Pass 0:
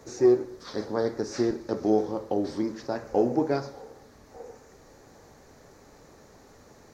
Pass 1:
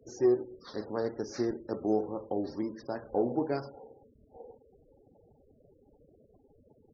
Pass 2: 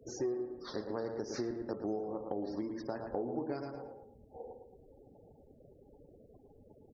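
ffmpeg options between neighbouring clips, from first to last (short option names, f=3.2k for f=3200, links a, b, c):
-af "afftfilt=real='re*gte(hypot(re,im),0.00794)':imag='im*gte(hypot(re,im),0.00794)':win_size=1024:overlap=0.75,volume=-5.5dB"
-filter_complex "[0:a]asplit=2[a][b];[b]adelay=111,lowpass=f=2.5k:p=1,volume=-7dB,asplit=2[c][d];[d]adelay=111,lowpass=f=2.5k:p=1,volume=0.33,asplit=2[e][f];[f]adelay=111,lowpass=f=2.5k:p=1,volume=0.33,asplit=2[g][h];[h]adelay=111,lowpass=f=2.5k:p=1,volume=0.33[i];[a][c][e][g][i]amix=inputs=5:normalize=0,acompressor=threshold=-37dB:ratio=4,volume=2dB"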